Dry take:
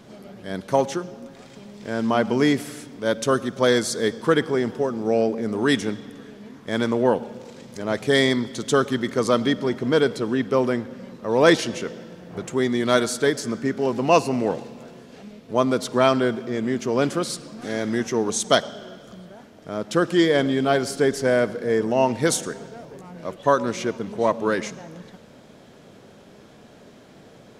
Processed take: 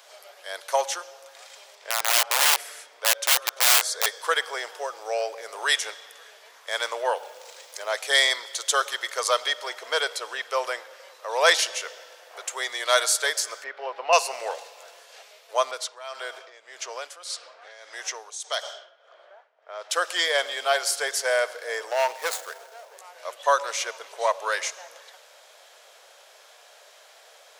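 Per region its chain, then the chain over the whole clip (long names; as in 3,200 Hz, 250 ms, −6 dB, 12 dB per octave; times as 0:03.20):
0:01.75–0:04.06: high-shelf EQ 3,800 Hz −10.5 dB + wrap-around overflow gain 17 dB
0:07.17–0:07.92: low-shelf EQ 190 Hz +9.5 dB + bit-depth reduction 12 bits, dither triangular
0:13.64–0:14.13: high-frequency loss of the air 360 metres + one half of a high-frequency compander encoder only
0:15.71–0:19.90: low-pass that shuts in the quiet parts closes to 1,500 Hz, open at −18 dBFS + downward compressor 2 to 1, threshold −26 dBFS + amplitude tremolo 1.7 Hz, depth 79%
0:21.91–0:22.97: running median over 15 samples + hard clipping −14.5 dBFS
whole clip: Butterworth high-pass 540 Hz 36 dB per octave; spectral tilt +2.5 dB per octave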